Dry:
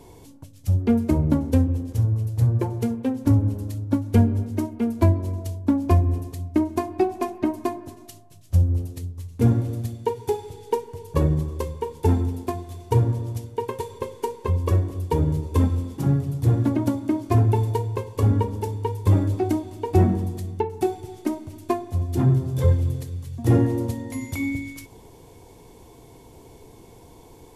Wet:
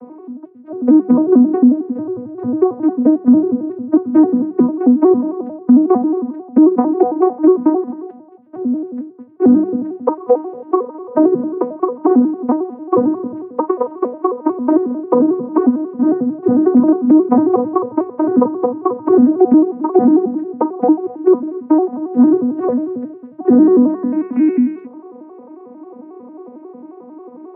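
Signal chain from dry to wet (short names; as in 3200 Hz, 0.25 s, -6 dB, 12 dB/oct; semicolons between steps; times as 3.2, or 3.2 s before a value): arpeggiated vocoder major triad, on B3, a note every 90 ms; LPF 1400 Hz 24 dB/oct; notches 50/100/150/200 Hz; maximiser +15 dB; gain -1 dB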